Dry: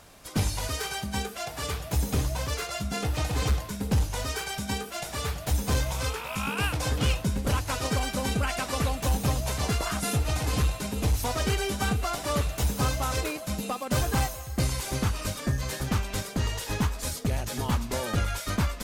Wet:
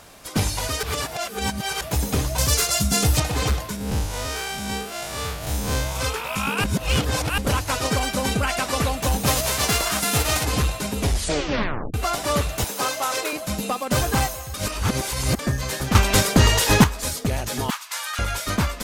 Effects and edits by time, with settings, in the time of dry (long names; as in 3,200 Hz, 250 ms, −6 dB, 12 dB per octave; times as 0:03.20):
0:00.83–0:01.81: reverse
0:02.38–0:03.20: bass and treble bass +7 dB, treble +12 dB
0:03.76–0:05.96: spectrum smeared in time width 105 ms
0:06.64–0:07.38: reverse
0:09.26–0:10.43: spectral envelope flattened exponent 0.6
0:10.99: tape stop 0.95 s
0:12.64–0:13.33: high-pass filter 400 Hz
0:14.54–0:15.39: reverse
0:15.95–0:16.84: clip gain +9 dB
0:17.70–0:18.19: high-pass filter 1,100 Hz 24 dB per octave
whole clip: low-shelf EQ 160 Hz −5 dB; level +6.5 dB